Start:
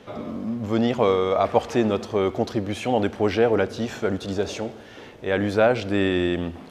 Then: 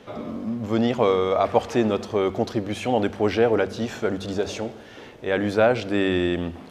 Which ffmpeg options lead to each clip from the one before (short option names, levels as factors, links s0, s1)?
-af "bandreject=f=48.97:t=h:w=4,bandreject=f=97.94:t=h:w=4,bandreject=f=146.91:t=h:w=4,bandreject=f=195.88:t=h:w=4"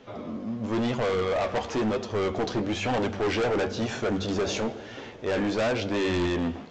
-af "dynaudnorm=f=410:g=3:m=2.51,flanger=delay=7.2:depth=9.3:regen=51:speed=1:shape=triangular,aresample=16000,asoftclip=type=hard:threshold=0.0708,aresample=44100"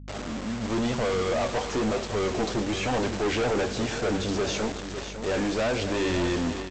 -af "aresample=16000,acrusher=bits=5:mix=0:aa=0.000001,aresample=44100,aeval=exprs='val(0)+0.00891*(sin(2*PI*50*n/s)+sin(2*PI*2*50*n/s)/2+sin(2*PI*3*50*n/s)/3+sin(2*PI*4*50*n/s)/4+sin(2*PI*5*50*n/s)/5)':c=same,aecho=1:1:555:0.316"